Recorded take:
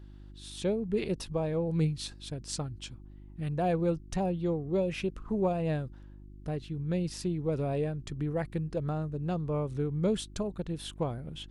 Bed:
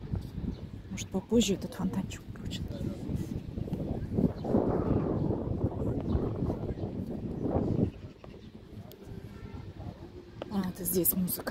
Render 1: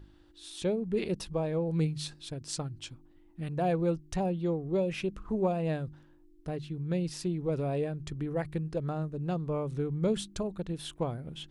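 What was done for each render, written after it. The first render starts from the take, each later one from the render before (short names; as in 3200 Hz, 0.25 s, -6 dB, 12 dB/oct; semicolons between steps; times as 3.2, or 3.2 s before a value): de-hum 50 Hz, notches 5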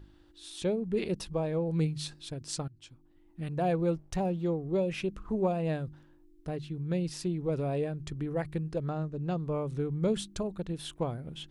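2.68–3.41 fade in, from -16.5 dB; 3.92–4.47 backlash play -53.5 dBFS; 8.86–9.38 LPF 7600 Hz 24 dB/oct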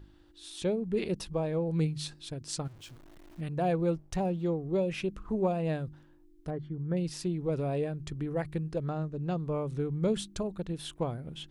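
2.65–3.41 zero-crossing step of -49.5 dBFS; 6.5–6.97 polynomial smoothing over 41 samples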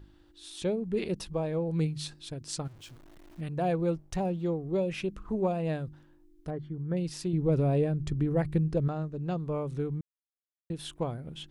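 7.33–8.88 low shelf 400 Hz +8.5 dB; 10.01–10.7 mute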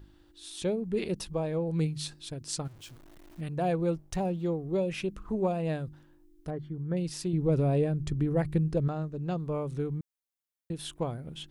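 high shelf 7700 Hz +5.5 dB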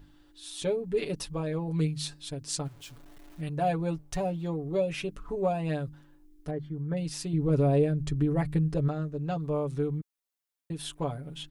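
bell 110 Hz -3.5 dB 2.5 oct; comb 7 ms, depth 74%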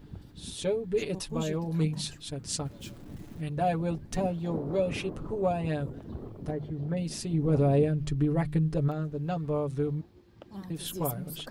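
add bed -10 dB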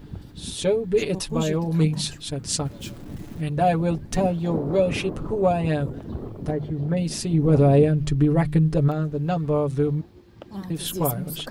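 gain +7.5 dB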